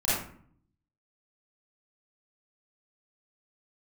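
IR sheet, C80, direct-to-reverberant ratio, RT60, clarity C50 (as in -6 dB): 4.0 dB, -12.0 dB, 0.55 s, -2.0 dB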